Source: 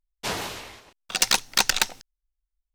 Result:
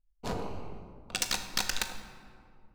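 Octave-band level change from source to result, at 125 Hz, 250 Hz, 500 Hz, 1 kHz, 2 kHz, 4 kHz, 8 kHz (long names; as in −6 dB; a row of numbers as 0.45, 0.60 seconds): 0.0, −2.0, −4.5, −9.0, −10.0, −10.0, −10.0 decibels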